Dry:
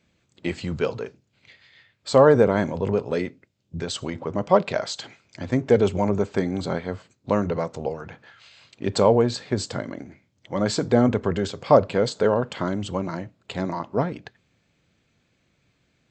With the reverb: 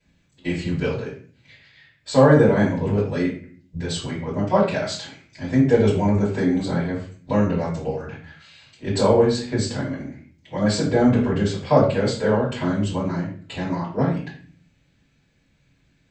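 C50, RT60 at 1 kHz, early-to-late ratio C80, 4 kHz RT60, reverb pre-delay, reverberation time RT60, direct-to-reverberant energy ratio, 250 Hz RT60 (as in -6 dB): 5.0 dB, 0.40 s, 9.5 dB, 0.35 s, 3 ms, 0.45 s, -10.5 dB, 0.75 s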